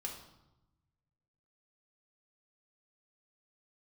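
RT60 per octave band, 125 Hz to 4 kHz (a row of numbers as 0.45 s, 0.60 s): 1.9 s, 1.3 s, 0.95 s, 0.95 s, 0.70 s, 0.70 s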